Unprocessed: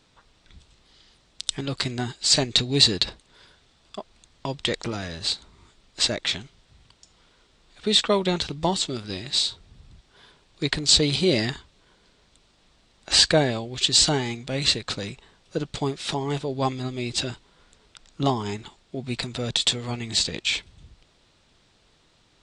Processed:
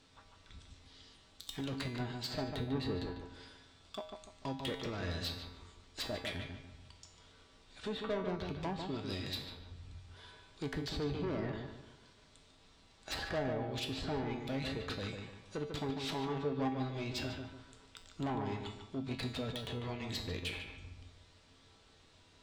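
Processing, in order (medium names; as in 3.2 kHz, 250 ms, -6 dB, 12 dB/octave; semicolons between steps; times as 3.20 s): low-pass that closes with the level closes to 1.2 kHz, closed at -20 dBFS; in parallel at 0 dB: compression, threshold -35 dBFS, peak gain reduction 18.5 dB; on the sum: saturation -23.5 dBFS, distortion -8 dB; feedback comb 89 Hz, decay 0.52 s, harmonics odd, mix 80%; on a send: filtered feedback delay 147 ms, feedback 38%, low-pass 2.4 kHz, level -5 dB; on the sum: trim +1.5 dB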